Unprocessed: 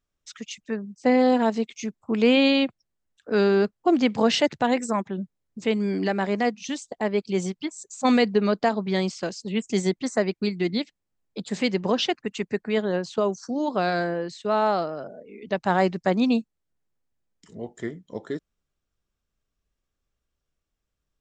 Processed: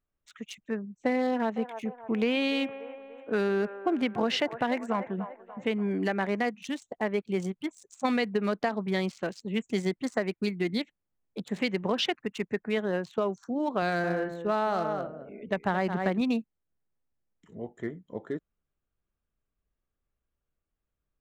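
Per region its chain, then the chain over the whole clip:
1.27–5.91 s: distance through air 60 m + feedback echo behind a band-pass 291 ms, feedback 51%, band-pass 1 kHz, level -11.5 dB
13.82–16.21 s: bass shelf 150 Hz +7.5 dB + delay 218 ms -9 dB
whole clip: local Wiener filter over 9 samples; dynamic bell 2 kHz, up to +5 dB, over -38 dBFS, Q 0.89; compression, threshold -20 dBFS; trim -3 dB

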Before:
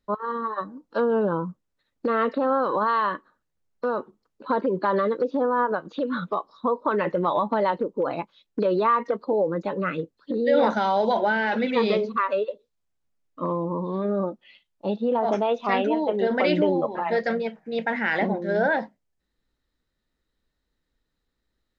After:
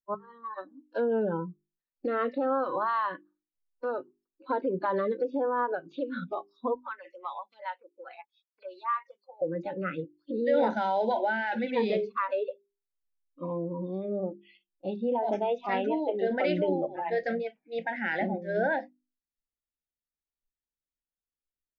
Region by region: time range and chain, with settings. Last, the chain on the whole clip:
6.75–9.42 s: high-pass 1.1 kHz + lamp-driven phase shifter 2.4 Hz
whole clip: spectral noise reduction 20 dB; treble shelf 4.4 kHz -12 dB; hum notches 50/100/150/200/250/300/350/400 Hz; trim -4.5 dB

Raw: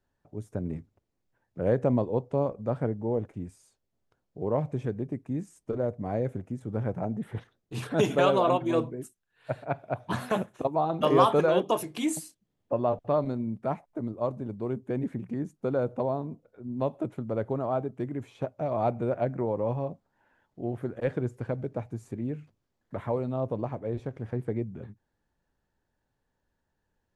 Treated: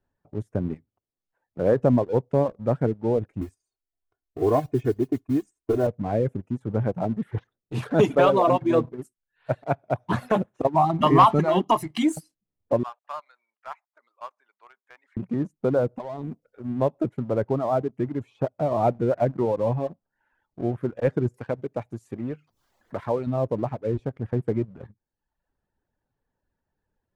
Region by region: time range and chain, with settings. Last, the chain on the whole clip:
0.74–1.80 s: bass shelf 140 Hz -8 dB + hum notches 60/120 Hz
3.41–5.87 s: gate -55 dBFS, range -9 dB + modulation noise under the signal 24 dB + comb 2.8 ms, depth 94%
10.74–12.03 s: comb 1 ms, depth 80% + tape noise reduction on one side only encoder only
12.83–15.17 s: high-pass 1.1 kHz 24 dB/octave + distance through air 77 m
15.97–16.68 s: treble shelf 2.1 kHz +10 dB + compression 12:1, threshold -32 dBFS
21.34–23.27 s: tilt EQ +2 dB/octave + upward compressor, threshold -47 dBFS
whole clip: reverb removal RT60 0.8 s; treble shelf 3 kHz -11 dB; waveshaping leveller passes 1; trim +3 dB

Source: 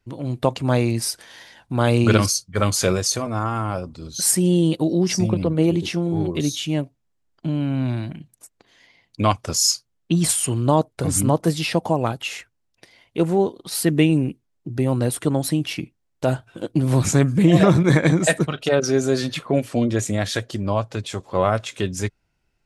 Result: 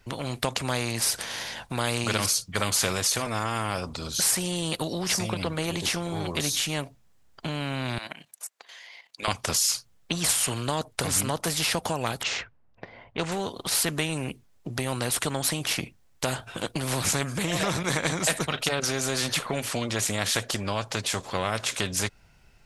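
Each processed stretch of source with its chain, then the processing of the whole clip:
7.98–9.28 s: high-pass 730 Hz + level held to a coarse grid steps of 12 dB
12.23–13.32 s: level-controlled noise filter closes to 1.1 kHz, open at -21 dBFS + low-pass 6.9 kHz 24 dB/octave
whole clip: peaking EQ 320 Hz -7 dB 0.55 oct; compression 2:1, threshold -23 dBFS; spectrum-flattening compressor 2:1

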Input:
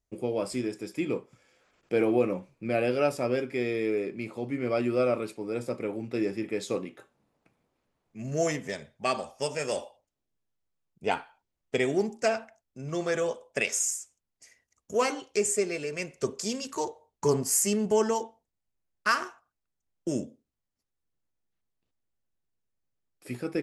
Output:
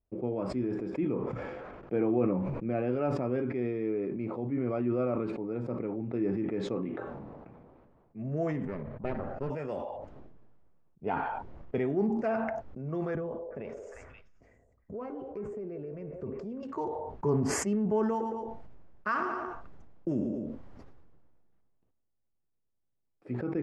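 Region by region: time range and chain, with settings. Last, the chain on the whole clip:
8.65–9.50 s: comb filter that takes the minimum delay 0.43 ms + low-pass 1.8 kHz 6 dB/octave + loudspeaker Doppler distortion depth 0.22 ms
13.15–16.63 s: tilt EQ -3 dB/octave + compression 2.5:1, threshold -42 dBFS + repeats whose band climbs or falls 177 ms, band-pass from 530 Hz, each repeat 1.4 oct, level -7 dB
18.03–23.32 s: treble shelf 4.5 kHz +7 dB + feedback delay 112 ms, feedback 24%, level -15.5 dB
whole clip: dynamic bell 540 Hz, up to -7 dB, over -39 dBFS, Q 1.4; low-pass 1 kHz 12 dB/octave; decay stretcher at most 26 dB/s

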